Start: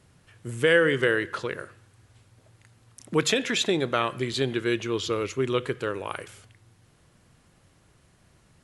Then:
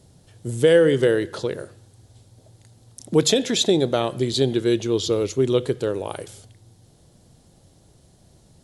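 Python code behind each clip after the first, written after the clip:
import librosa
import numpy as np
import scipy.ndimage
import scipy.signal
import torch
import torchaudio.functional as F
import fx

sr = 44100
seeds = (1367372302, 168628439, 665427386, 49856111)

y = fx.band_shelf(x, sr, hz=1700.0, db=-12.0, octaves=1.7)
y = F.gain(torch.from_numpy(y), 6.5).numpy()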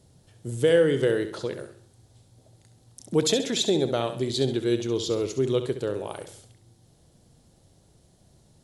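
y = fx.echo_feedback(x, sr, ms=67, feedback_pct=38, wet_db=-10)
y = F.gain(torch.from_numpy(y), -5.0).numpy()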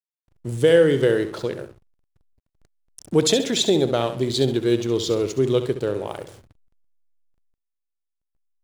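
y = fx.backlash(x, sr, play_db=-41.0)
y = F.gain(torch.from_numpy(y), 4.5).numpy()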